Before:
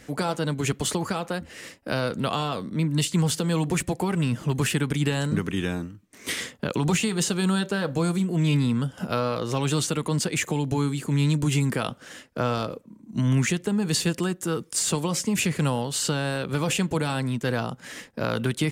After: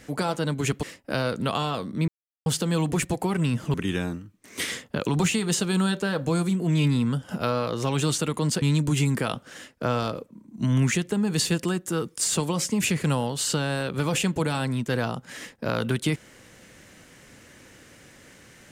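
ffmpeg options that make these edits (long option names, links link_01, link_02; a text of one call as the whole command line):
ffmpeg -i in.wav -filter_complex "[0:a]asplit=6[link_01][link_02][link_03][link_04][link_05][link_06];[link_01]atrim=end=0.832[link_07];[link_02]atrim=start=1.608:end=2.86,asetpts=PTS-STARTPTS,afade=type=out:start_time=1.248:duration=0.004:curve=hsin[link_08];[link_03]atrim=start=2.86:end=3.24,asetpts=PTS-STARTPTS,volume=0[link_09];[link_04]atrim=start=3.24:end=4.522,asetpts=PTS-STARTPTS,afade=type=in:duration=0.004:curve=hsin[link_10];[link_05]atrim=start=5.428:end=10.312[link_11];[link_06]atrim=start=11.168[link_12];[link_08][link_09][link_10]concat=n=3:v=0:a=1[link_13];[link_07][link_13]acrossfade=duration=0.004:curve1=hsin:curve2=hsin[link_14];[link_14][link_11]acrossfade=duration=0.004:curve1=hsin:curve2=hsin[link_15];[link_15][link_12]acrossfade=duration=0.004:curve1=hsin:curve2=hsin" out.wav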